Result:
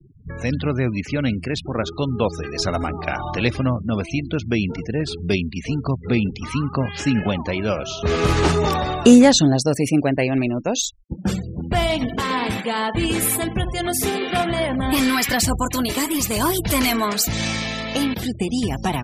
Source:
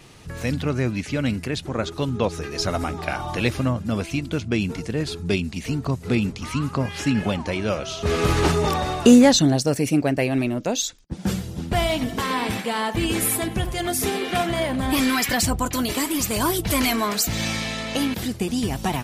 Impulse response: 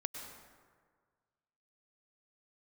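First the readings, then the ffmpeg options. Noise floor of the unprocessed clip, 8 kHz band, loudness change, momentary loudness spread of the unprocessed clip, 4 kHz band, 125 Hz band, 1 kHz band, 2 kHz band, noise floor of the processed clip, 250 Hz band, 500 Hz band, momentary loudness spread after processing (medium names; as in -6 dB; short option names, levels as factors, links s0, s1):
-37 dBFS, +1.5 dB, +2.0 dB, 7 LU, +1.5 dB, +2.0 dB, +2.0 dB, +2.0 dB, -36 dBFS, +2.0 dB, +2.0 dB, 7 LU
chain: -af "afftfilt=real='re*gte(hypot(re,im),0.0178)':imag='im*gte(hypot(re,im),0.0178)':win_size=1024:overlap=0.75,volume=1.26"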